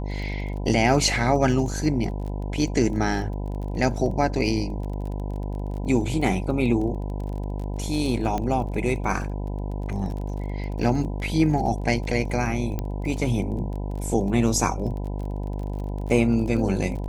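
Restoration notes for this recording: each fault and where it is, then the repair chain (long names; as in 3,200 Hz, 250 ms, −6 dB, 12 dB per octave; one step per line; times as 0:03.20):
mains buzz 50 Hz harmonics 20 −29 dBFS
surface crackle 26 per second −33 dBFS
0:08.38: click −15 dBFS
0:12.79: click −15 dBFS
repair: click removal
hum removal 50 Hz, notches 20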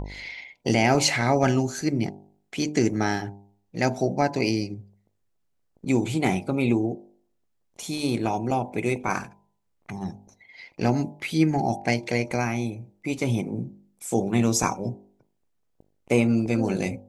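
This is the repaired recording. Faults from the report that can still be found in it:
none of them is left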